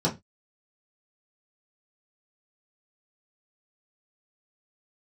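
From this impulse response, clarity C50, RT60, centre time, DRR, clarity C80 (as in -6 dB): 15.5 dB, 0.20 s, 16 ms, -6.0 dB, 24.0 dB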